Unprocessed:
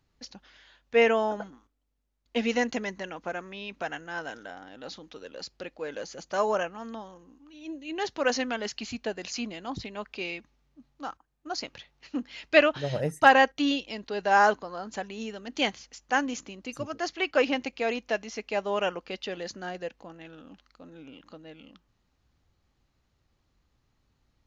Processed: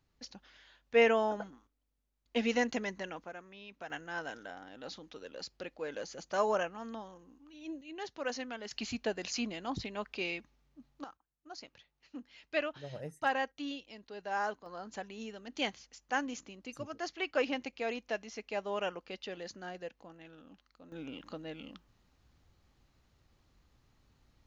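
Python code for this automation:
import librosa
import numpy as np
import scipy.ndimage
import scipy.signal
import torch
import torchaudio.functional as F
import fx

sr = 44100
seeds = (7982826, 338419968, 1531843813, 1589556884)

y = fx.gain(x, sr, db=fx.steps((0.0, -4.0), (3.24, -12.0), (3.9, -4.0), (7.81, -11.0), (8.71, -2.0), (11.04, -14.0), (14.66, -7.5), (20.92, 3.0)))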